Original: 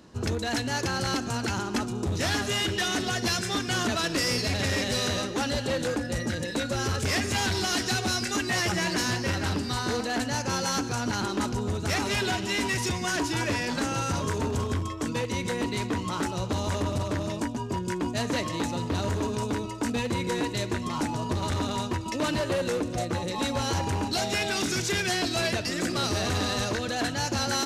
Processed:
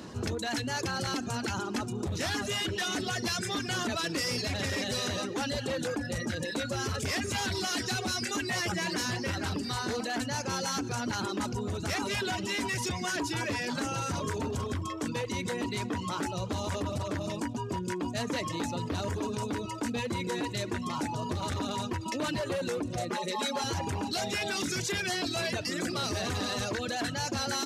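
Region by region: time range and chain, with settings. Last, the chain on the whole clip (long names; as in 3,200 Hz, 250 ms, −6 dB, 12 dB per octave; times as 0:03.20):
0:23.11–0:23.64: high-pass filter 290 Hz + comb filter 4.9 ms, depth 96%
whole clip: high-pass filter 72 Hz; reverb reduction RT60 0.6 s; envelope flattener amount 50%; level −5 dB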